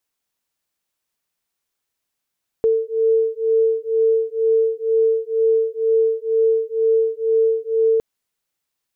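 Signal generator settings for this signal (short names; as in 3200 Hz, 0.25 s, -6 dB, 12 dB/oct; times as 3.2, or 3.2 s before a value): beating tones 447 Hz, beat 2.1 Hz, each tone -18 dBFS 5.36 s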